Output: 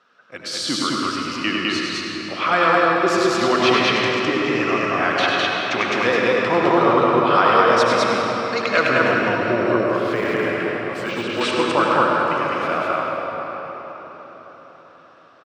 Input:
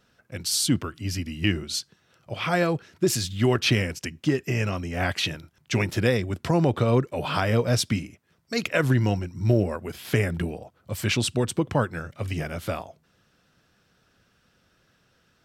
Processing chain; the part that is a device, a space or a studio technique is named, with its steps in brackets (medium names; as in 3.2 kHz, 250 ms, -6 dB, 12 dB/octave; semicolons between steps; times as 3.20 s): station announcement (band-pass 350–4300 Hz; peaking EQ 1.2 kHz +11 dB 0.55 oct; loudspeakers at several distances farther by 34 m -6 dB, 71 m -1 dB; reverberation RT60 4.9 s, pre-delay 68 ms, DRR -1 dB); 9.86–11.41 s: de-esser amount 100%; trim +2.5 dB